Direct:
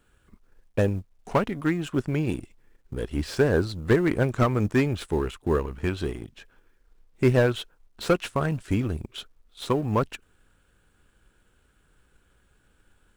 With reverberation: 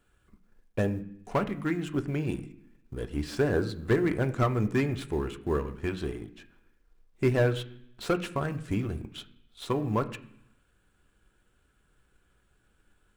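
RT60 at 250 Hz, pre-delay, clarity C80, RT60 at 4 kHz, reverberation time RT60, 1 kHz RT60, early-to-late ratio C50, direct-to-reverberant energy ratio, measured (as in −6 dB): 0.85 s, 3 ms, 17.5 dB, 0.95 s, 0.70 s, 0.70 s, 15.5 dB, 7.0 dB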